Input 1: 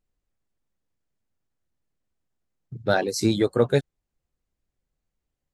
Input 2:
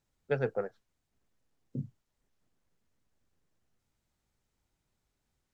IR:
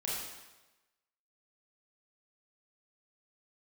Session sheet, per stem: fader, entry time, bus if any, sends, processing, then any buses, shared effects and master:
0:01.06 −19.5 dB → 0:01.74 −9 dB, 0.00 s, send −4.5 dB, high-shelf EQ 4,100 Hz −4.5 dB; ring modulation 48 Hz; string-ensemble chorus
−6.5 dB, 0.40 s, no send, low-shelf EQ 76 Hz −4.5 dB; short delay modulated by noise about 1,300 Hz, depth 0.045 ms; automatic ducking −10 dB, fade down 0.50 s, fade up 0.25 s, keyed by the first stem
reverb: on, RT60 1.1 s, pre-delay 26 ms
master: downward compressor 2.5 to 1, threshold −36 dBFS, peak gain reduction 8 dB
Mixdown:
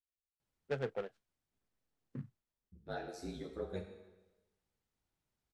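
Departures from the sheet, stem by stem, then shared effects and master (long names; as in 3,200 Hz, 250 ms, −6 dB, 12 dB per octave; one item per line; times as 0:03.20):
stem 1 −19.5 dB → −30.0 dB
master: missing downward compressor 2.5 to 1, threshold −36 dBFS, peak gain reduction 8 dB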